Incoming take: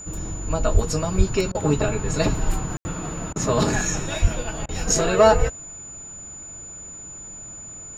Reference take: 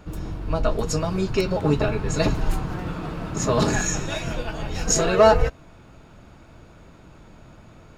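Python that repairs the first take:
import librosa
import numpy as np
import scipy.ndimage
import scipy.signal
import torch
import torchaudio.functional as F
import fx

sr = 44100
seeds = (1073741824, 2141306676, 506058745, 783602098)

y = fx.notch(x, sr, hz=7000.0, q=30.0)
y = fx.fix_deplosive(y, sr, at_s=(0.73, 1.17, 4.21))
y = fx.fix_ambience(y, sr, seeds[0], print_start_s=5.61, print_end_s=6.11, start_s=2.77, end_s=2.85)
y = fx.fix_interpolate(y, sr, at_s=(1.52, 3.33, 4.66), length_ms=27.0)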